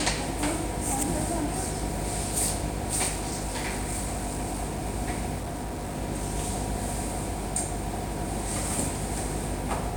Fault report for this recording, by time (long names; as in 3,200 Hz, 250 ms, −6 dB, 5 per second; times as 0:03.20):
mains buzz 50 Hz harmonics 11 −35 dBFS
0:03.08–0:04.82: clipping −26.5 dBFS
0:05.38–0:05.95: clipping −29.5 dBFS